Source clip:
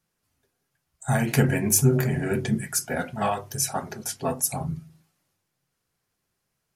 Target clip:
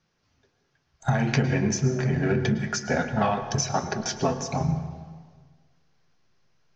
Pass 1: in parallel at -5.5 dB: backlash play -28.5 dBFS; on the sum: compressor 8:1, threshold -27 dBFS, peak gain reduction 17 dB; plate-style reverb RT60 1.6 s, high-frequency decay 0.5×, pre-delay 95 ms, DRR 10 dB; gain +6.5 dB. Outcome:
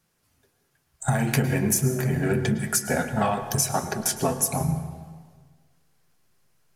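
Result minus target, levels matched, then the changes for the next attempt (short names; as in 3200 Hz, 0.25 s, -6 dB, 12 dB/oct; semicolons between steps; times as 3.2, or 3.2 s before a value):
8000 Hz band +5.5 dB
add after compressor: steep low-pass 6300 Hz 72 dB/oct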